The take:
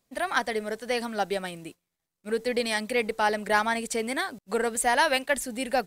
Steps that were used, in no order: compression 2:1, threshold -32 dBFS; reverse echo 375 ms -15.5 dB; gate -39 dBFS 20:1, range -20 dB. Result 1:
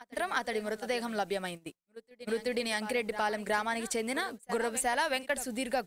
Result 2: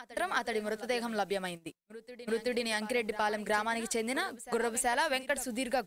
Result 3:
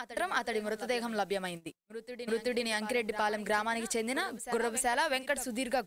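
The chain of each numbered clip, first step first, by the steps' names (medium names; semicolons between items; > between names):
reverse echo > compression > gate; compression > gate > reverse echo; gate > reverse echo > compression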